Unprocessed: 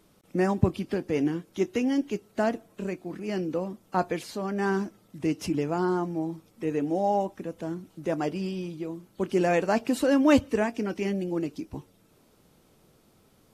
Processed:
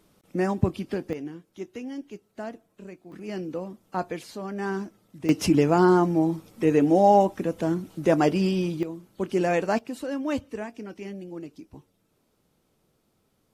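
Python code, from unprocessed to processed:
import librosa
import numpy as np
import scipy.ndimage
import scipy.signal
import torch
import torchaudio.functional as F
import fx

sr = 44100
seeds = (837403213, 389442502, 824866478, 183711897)

y = fx.gain(x, sr, db=fx.steps((0.0, -0.5), (1.13, -10.0), (3.12, -3.0), (5.29, 8.0), (8.83, 0.0), (9.79, -8.5)))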